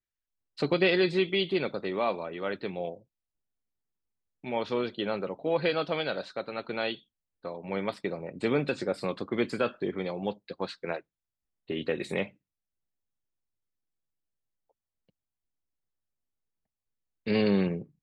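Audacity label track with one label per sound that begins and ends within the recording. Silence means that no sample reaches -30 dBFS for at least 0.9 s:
4.460000	12.240000	sound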